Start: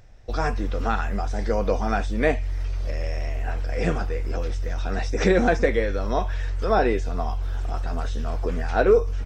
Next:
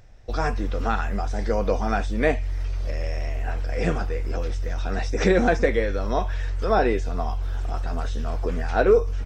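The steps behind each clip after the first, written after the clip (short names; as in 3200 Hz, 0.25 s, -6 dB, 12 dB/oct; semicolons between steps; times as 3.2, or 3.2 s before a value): nothing audible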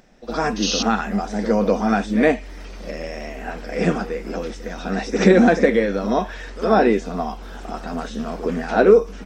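resonant low shelf 140 Hz -13 dB, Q 3; painted sound noise, 0.62–0.83, 2500–6600 Hz -27 dBFS; pre-echo 62 ms -12 dB; gain +3.5 dB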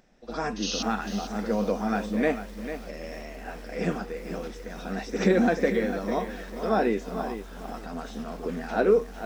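lo-fi delay 0.447 s, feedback 35%, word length 6-bit, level -10 dB; gain -8.5 dB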